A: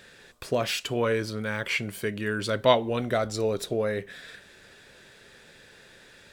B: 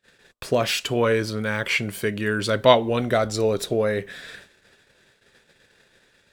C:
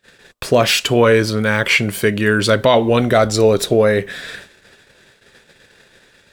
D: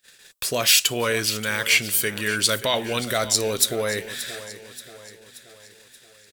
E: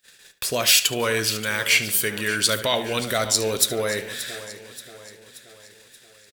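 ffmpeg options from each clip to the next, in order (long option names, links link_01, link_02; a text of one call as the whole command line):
ffmpeg -i in.wav -af "agate=range=-31dB:threshold=-50dB:ratio=16:detection=peak,volume=5dB" out.wav
ffmpeg -i in.wav -af "alimiter=level_in=10dB:limit=-1dB:release=50:level=0:latency=1,volume=-1dB" out.wav
ffmpeg -i in.wav -af "aecho=1:1:579|1158|1737|2316|2895:0.178|0.0889|0.0445|0.0222|0.0111,crystalizer=i=8.5:c=0,volume=-14.5dB" out.wav
ffmpeg -i in.wav -filter_complex "[0:a]asplit=2[link_01][link_02];[link_02]adelay=72,lowpass=frequency=4000:poles=1,volume=-12dB,asplit=2[link_03][link_04];[link_04]adelay=72,lowpass=frequency=4000:poles=1,volume=0.36,asplit=2[link_05][link_06];[link_06]adelay=72,lowpass=frequency=4000:poles=1,volume=0.36,asplit=2[link_07][link_08];[link_08]adelay=72,lowpass=frequency=4000:poles=1,volume=0.36[link_09];[link_01][link_03][link_05][link_07][link_09]amix=inputs=5:normalize=0" out.wav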